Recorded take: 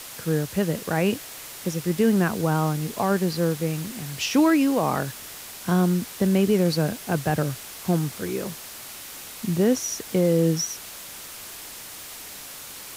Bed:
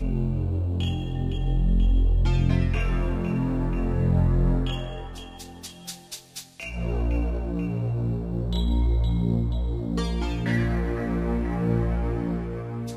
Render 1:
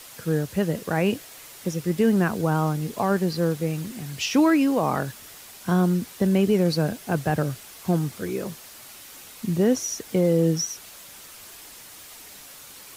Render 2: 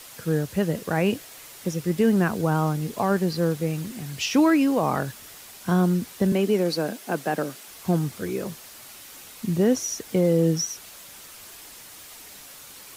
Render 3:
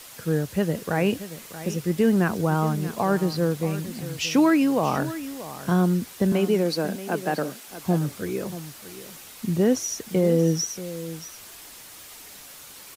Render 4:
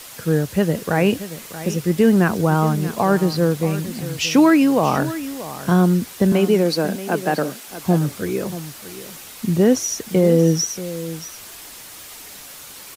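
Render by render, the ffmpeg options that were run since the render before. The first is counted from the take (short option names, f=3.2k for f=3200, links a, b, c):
-af "afftdn=nr=6:nf=-40"
-filter_complex "[0:a]asettb=1/sr,asplit=3[a][b][c];[a]atrim=end=6.324[d];[b]atrim=start=6.32:end=7.68,asetpts=PTS-STARTPTS,afade=t=in:d=0.004:c=qsin,afade=t=out:st=1.356:d=0.004:c=qsin,highpass=f=210:w=0.5412,highpass=f=210:w=1.3066[e];[c]atrim=start=7.676[f];[d][e]acrossfade=d=0.004:c1=hsin:c2=qsin[g];[g][f]acrossfade=d=0.004:c1=qsin:c2=hsin"
-af "aecho=1:1:631:0.2"
-af "volume=5.5dB"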